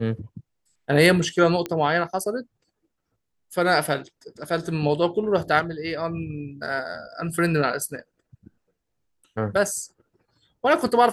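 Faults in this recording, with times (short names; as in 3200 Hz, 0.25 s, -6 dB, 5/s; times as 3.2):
1.66 pop -14 dBFS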